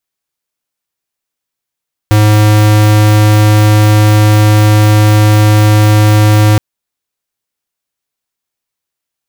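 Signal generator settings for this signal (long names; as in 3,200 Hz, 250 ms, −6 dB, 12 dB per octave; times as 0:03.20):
tone square 106 Hz −6 dBFS 4.47 s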